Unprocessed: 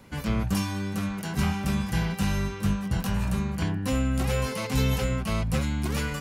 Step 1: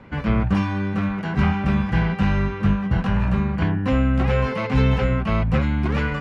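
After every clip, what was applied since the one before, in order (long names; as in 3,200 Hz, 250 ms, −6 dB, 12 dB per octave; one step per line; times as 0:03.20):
Chebyshev low-pass filter 2,000 Hz, order 2
level +7.5 dB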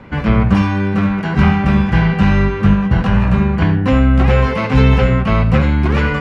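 convolution reverb RT60 0.20 s, pre-delay 67 ms, DRR 10 dB
level +7 dB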